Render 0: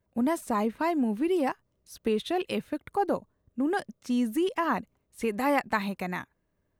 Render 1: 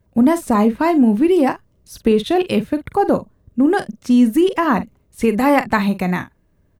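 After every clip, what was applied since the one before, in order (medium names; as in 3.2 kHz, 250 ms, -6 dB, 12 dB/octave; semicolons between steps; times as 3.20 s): bass shelf 270 Hz +9 dB; doubling 44 ms -12.5 dB; trim +9 dB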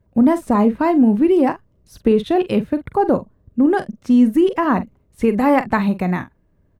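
treble shelf 2.6 kHz -10 dB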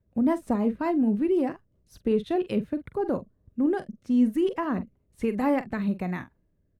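rotary cabinet horn 5.5 Hz, later 1.1 Hz, at 2.66 s; trim -8 dB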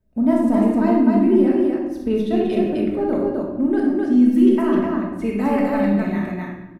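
comb 3.2 ms, depth 35%; on a send: loudspeakers at several distances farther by 22 m -6 dB, 88 m -2 dB; on the sum: simulated room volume 520 m³, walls mixed, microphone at 1.5 m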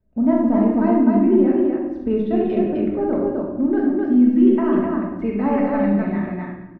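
low-pass 2 kHz 12 dB/octave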